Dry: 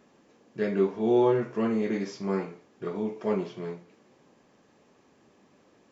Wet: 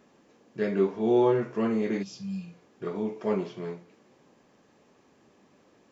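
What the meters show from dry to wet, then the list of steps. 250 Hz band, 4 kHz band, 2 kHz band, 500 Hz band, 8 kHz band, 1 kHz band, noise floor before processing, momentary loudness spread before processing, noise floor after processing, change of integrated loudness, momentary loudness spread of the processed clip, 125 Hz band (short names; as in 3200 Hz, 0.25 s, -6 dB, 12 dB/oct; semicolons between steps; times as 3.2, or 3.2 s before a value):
0.0 dB, 0.0 dB, -0.5 dB, 0.0 dB, n/a, -0.5 dB, -63 dBFS, 16 LU, -63 dBFS, 0.0 dB, 16 LU, 0.0 dB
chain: spectral repair 2.05–2.59, 210–2400 Hz after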